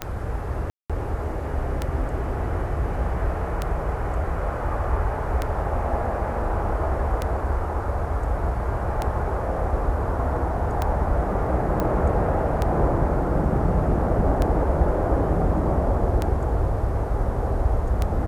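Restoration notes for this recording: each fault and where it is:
scratch tick 33 1/3 rpm −10 dBFS
0:00.70–0:00.90: drop-out 196 ms
0:11.80: click −12 dBFS

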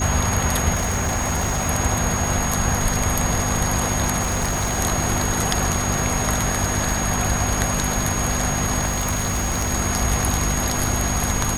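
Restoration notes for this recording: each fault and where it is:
surface crackle 220 per second −30 dBFS
mains hum 50 Hz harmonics 5 −27 dBFS
whistle 6,600 Hz −26 dBFS
0:00.74–0:01.70: clipping −18 dBFS
0:04.21–0:04.80: clipping −18 dBFS
0:08.85–0:09.72: clipping −18 dBFS

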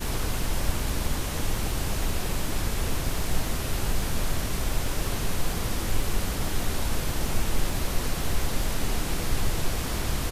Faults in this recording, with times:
surface crackle 11 per second −29 dBFS

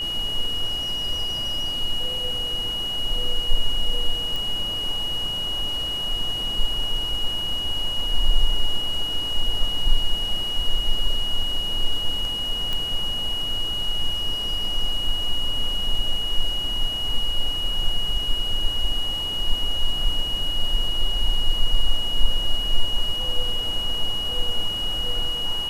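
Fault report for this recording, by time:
whistle 2,900 Hz −25 dBFS
0:04.36: click
0:12.73: click −14 dBFS

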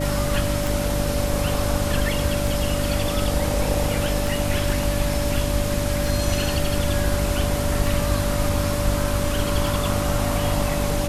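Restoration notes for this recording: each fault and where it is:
mains hum 50 Hz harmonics 6 −26 dBFS
scratch tick 33 1/3 rpm
whistle 580 Hz −27 dBFS

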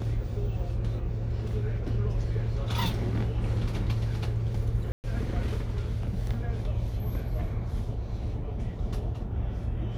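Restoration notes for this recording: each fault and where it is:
0:04.92–0:05.04: drop-out 119 ms

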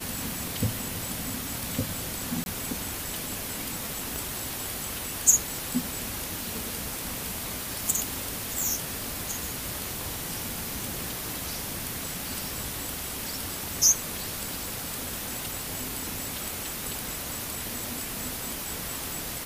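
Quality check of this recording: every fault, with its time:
0:02.44–0:02.46: drop-out 21 ms
0:04.16: click

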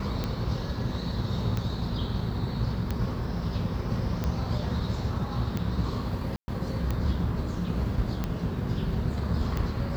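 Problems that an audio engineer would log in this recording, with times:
scratch tick 45 rpm −16 dBFS
0:06.36–0:06.48: drop-out 120 ms

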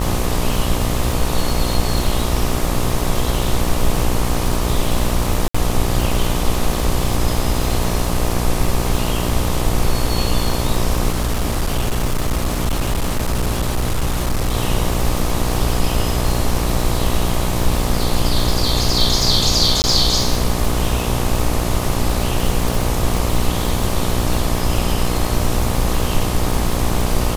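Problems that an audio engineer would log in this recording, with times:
mains buzz 60 Hz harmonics 21 −22 dBFS
surface crackle 190 per second −21 dBFS
0:05.48–0:05.54: drop-out 65 ms
0:11.10–0:14.55: clipping −14 dBFS
0:19.82–0:19.84: drop-out 19 ms

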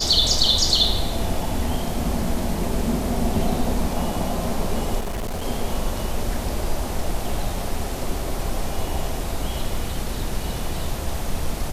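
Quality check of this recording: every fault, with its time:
0:04.99–0:05.45: clipping −23.5 dBFS

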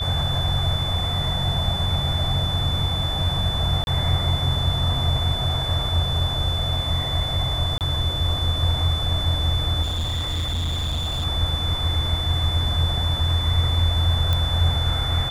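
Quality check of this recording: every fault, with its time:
whistle 3,500 Hz −26 dBFS
0:03.84–0:03.87: drop-out 31 ms
0:07.78–0:07.81: drop-out 28 ms
0:09.82–0:11.26: clipping −21.5 dBFS
0:14.33: click −10 dBFS

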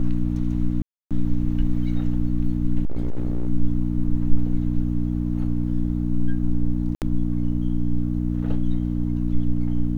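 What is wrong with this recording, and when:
mains hum 60 Hz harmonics 5 −24 dBFS
0:00.82–0:01.11: drop-out 287 ms
0:02.85–0:03.47: clipping −17.5 dBFS
0:06.95–0:07.02: drop-out 68 ms

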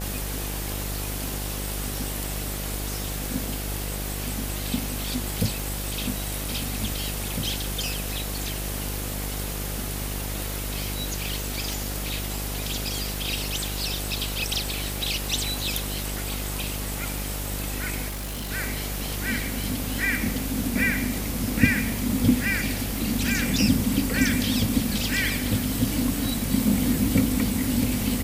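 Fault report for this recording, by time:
mains buzz 50 Hz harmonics 17 −32 dBFS
0:00.72: click
0:05.60: click
0:11.73: click
0:18.08–0:18.52: clipping −29 dBFS

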